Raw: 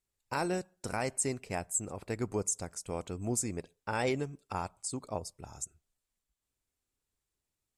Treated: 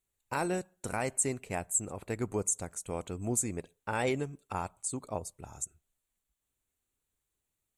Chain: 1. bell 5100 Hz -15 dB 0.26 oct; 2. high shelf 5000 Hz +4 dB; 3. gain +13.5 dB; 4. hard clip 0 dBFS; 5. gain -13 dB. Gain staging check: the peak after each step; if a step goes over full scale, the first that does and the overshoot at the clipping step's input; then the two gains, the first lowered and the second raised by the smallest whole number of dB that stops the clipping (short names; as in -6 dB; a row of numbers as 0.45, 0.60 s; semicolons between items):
-19.0, -16.0, -2.5, -2.5, -15.5 dBFS; no overload